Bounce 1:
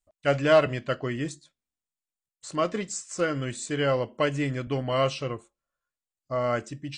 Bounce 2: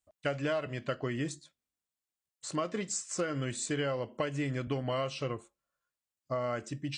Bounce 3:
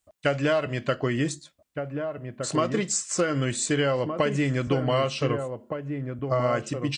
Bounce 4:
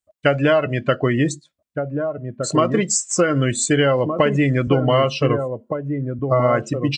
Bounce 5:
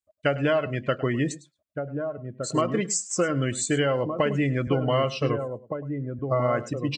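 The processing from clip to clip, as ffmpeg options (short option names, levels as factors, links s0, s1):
-af "highpass=49,acompressor=threshold=0.0355:ratio=10"
-filter_complex "[0:a]asplit=2[s0][s1];[s1]adelay=1516,volume=0.501,highshelf=f=4000:g=-34.1[s2];[s0][s2]amix=inputs=2:normalize=0,volume=2.66"
-af "afftdn=nr=17:nf=-35,volume=2.37"
-af "aecho=1:1:104:0.133,volume=0.447"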